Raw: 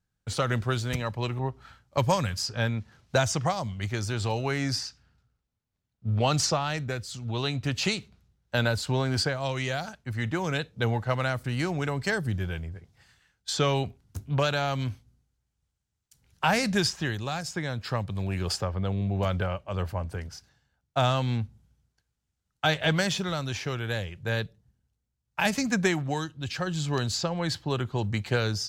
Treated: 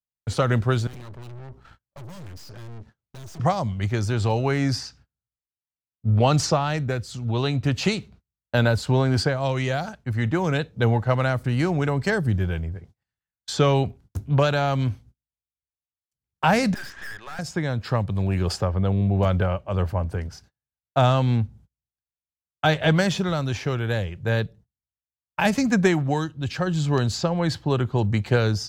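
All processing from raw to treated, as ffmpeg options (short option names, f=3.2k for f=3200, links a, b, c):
-filter_complex "[0:a]asettb=1/sr,asplit=3[a][b][c];[a]atrim=end=0.874[d];[b]atrim=start=0.87:end=3.4,asetpts=PTS-STARTPTS,afade=t=in:d=0.004:c=qsin,afade=t=out:st=2.526:d=0.004:c=qsin,acrossover=split=210|3000[e][f][g];[f]acompressor=threshold=-36dB:ratio=3:attack=3.2:release=140:knee=2.83:detection=peak[h];[e][h][g]amix=inputs=3:normalize=0,aeval=exprs='(tanh(178*val(0)+0.6)-tanh(0.6))/178':c=same[i];[c]atrim=start=3.396[j];[d][i]acrossfade=d=0.004:c1=hsin:c2=qsin[k];[k][j]acrossfade=d=0.004:c1=qsin:c2=hsin,asettb=1/sr,asplit=3[l][m][n];[l]atrim=end=16.744[o];[m]atrim=start=16.74:end=17.39,asetpts=PTS-STARTPTS,afade=t=in:d=0.004:c=qsin,afade=t=out:st=0.646:d=0.004:c=qsin,bandpass=f=1.7k:t=q:w=4,aeval=exprs='0.0794*sin(PI/2*3.16*val(0)/0.0794)':c=same,aeval=exprs='(tanh(79.4*val(0)+0.65)-tanh(0.65))/79.4':c=same[p];[n]atrim=start=17.386[q];[o][p]acrossfade=d=0.004:c1=hsin:c2=qsin[r];[r][q]acrossfade=d=0.004:c1=qsin:c2=hsin,agate=range=-32dB:threshold=-53dB:ratio=16:detection=peak,tiltshelf=f=1.5k:g=4,volume=3dB"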